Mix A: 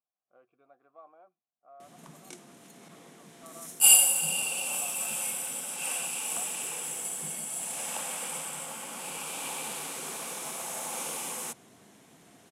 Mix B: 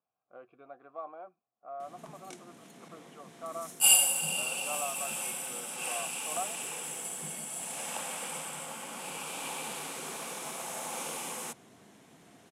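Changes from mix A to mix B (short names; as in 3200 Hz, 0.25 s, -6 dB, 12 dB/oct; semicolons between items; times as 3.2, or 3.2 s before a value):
speech +11.0 dB; master: add high shelf 5900 Hz -5.5 dB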